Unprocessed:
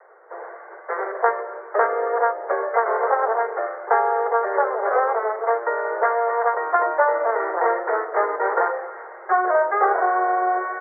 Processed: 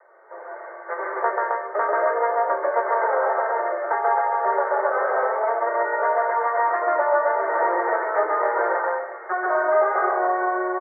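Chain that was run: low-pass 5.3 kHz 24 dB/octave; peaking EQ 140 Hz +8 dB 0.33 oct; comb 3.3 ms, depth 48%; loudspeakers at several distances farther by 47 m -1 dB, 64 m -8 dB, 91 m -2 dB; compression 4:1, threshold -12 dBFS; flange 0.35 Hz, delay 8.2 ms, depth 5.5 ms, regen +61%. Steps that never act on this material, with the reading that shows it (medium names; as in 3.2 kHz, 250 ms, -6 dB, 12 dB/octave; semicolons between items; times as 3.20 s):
low-pass 5.3 kHz: input has nothing above 2.2 kHz; peaking EQ 140 Hz: input has nothing below 320 Hz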